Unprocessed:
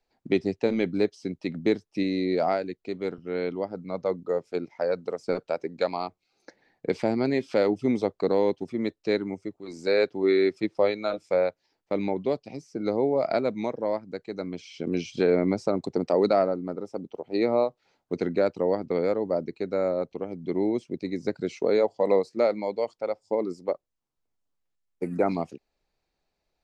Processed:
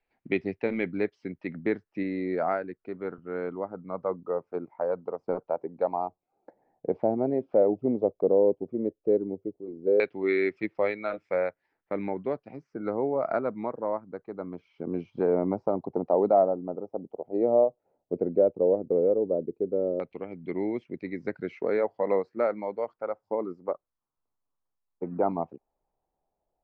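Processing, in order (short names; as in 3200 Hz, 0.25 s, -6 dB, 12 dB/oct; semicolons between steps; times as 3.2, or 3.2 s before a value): LFO low-pass saw down 0.1 Hz 420–2400 Hz; gain -4.5 dB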